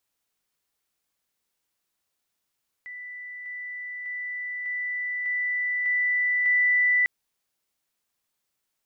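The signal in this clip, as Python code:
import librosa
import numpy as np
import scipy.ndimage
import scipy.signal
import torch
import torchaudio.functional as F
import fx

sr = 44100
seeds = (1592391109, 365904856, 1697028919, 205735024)

y = fx.level_ladder(sr, hz=1980.0, from_db=-36.0, step_db=3.0, steps=7, dwell_s=0.6, gap_s=0.0)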